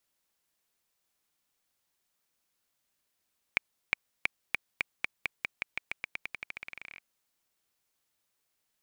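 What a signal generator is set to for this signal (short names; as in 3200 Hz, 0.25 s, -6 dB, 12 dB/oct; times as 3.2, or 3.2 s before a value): bouncing ball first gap 0.36 s, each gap 0.9, 2320 Hz, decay 11 ms -8.5 dBFS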